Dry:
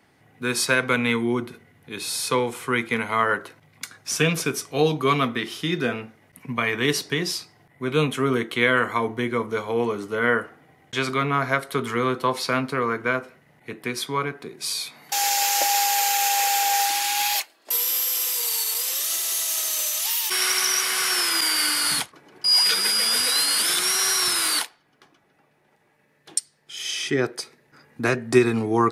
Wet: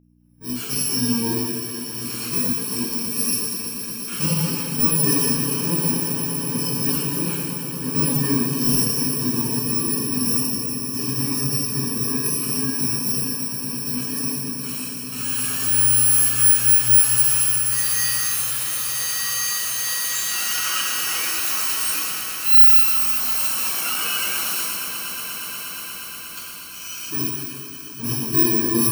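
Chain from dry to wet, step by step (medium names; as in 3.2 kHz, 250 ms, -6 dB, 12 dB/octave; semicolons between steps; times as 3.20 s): bit-reversed sample order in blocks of 64 samples; in parallel at +2 dB: level held to a coarse grid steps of 20 dB; on the sum: saturation -14 dBFS, distortion -10 dB; on a send: echo with a slow build-up 119 ms, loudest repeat 8, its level -13 dB; on the sum: plate-style reverb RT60 2.3 s, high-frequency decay 0.95×, DRR -5.5 dB; mains buzz 60 Hz, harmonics 5, -42 dBFS -1 dB/octave; spectral contrast expander 1.5:1; trim -2 dB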